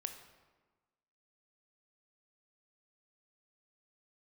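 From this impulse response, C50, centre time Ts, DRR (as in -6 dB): 8.5 dB, 19 ms, 6.5 dB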